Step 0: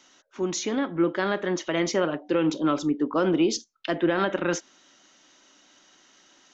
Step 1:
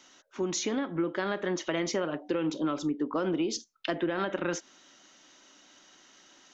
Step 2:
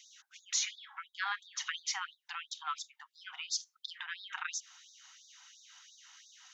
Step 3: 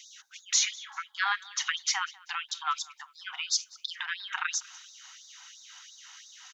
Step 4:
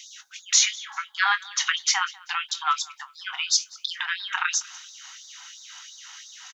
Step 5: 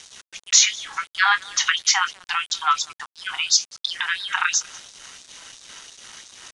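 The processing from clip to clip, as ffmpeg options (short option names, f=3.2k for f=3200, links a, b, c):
-af "acompressor=threshold=-27dB:ratio=4"
-af "asubboost=boost=5:cutoff=240,afftfilt=real='re*gte(b*sr/1024,700*pow(3600/700,0.5+0.5*sin(2*PI*2.9*pts/sr)))':imag='im*gte(b*sr/1024,700*pow(3600/700,0.5+0.5*sin(2*PI*2.9*pts/sr)))':win_size=1024:overlap=0.75,volume=1.5dB"
-af "aecho=1:1:195|390:0.0668|0.0247,volume=7.5dB"
-filter_complex "[0:a]asplit=2[a][b];[b]adelay=22,volume=-11dB[c];[a][c]amix=inputs=2:normalize=0,volume=6dB"
-af "aeval=exprs='val(0)*gte(abs(val(0)),0.00841)':c=same,aresample=22050,aresample=44100,volume=4dB"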